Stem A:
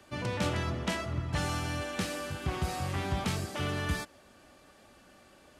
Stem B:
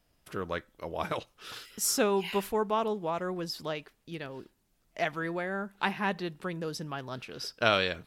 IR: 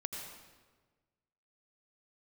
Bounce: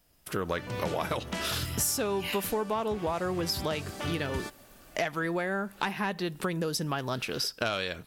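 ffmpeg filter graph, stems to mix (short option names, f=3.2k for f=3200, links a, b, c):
-filter_complex "[0:a]adelay=450,volume=1dB[a];[1:a]highshelf=f=7.5k:g=10.5,dynaudnorm=f=250:g=3:m=11.5dB,asoftclip=type=tanh:threshold=-8dB,volume=1.5dB[b];[a][b]amix=inputs=2:normalize=0,acompressor=threshold=-28dB:ratio=6"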